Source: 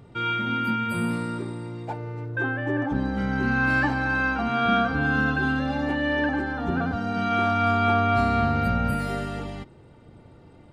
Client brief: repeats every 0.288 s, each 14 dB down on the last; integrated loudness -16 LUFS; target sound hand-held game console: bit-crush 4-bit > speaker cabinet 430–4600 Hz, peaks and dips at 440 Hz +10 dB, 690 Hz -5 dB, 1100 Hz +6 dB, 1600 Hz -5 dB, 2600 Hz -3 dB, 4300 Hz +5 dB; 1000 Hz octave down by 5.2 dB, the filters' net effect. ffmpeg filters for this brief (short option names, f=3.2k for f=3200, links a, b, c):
-af "equalizer=f=1k:t=o:g=-7,aecho=1:1:288|576:0.2|0.0399,acrusher=bits=3:mix=0:aa=0.000001,highpass=430,equalizer=f=440:t=q:w=4:g=10,equalizer=f=690:t=q:w=4:g=-5,equalizer=f=1.1k:t=q:w=4:g=6,equalizer=f=1.6k:t=q:w=4:g=-5,equalizer=f=2.6k:t=q:w=4:g=-3,equalizer=f=4.3k:t=q:w=4:g=5,lowpass=f=4.6k:w=0.5412,lowpass=f=4.6k:w=1.3066,volume=10.5dB"